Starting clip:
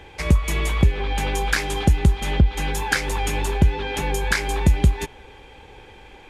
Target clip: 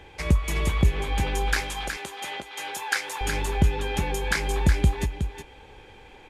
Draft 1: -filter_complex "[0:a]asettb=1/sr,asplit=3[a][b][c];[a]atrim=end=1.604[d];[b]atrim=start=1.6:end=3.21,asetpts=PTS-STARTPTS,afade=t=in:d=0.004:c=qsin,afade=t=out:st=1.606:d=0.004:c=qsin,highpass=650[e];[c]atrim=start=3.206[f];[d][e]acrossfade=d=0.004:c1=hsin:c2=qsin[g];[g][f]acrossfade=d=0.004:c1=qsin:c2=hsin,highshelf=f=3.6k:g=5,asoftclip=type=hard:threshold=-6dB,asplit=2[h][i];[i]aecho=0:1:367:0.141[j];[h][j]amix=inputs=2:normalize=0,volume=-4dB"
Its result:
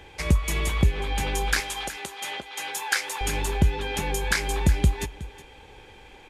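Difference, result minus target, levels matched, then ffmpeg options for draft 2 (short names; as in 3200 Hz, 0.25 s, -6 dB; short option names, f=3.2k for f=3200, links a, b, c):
echo-to-direct -9 dB; 8000 Hz band +3.5 dB
-filter_complex "[0:a]asettb=1/sr,asplit=3[a][b][c];[a]atrim=end=1.604[d];[b]atrim=start=1.6:end=3.21,asetpts=PTS-STARTPTS,afade=t=in:d=0.004:c=qsin,afade=t=out:st=1.606:d=0.004:c=qsin,highpass=650[e];[c]atrim=start=3.206[f];[d][e]acrossfade=d=0.004:c1=hsin:c2=qsin[g];[g][f]acrossfade=d=0.004:c1=qsin:c2=hsin,asoftclip=type=hard:threshold=-6dB,asplit=2[h][i];[i]aecho=0:1:367:0.398[j];[h][j]amix=inputs=2:normalize=0,volume=-4dB"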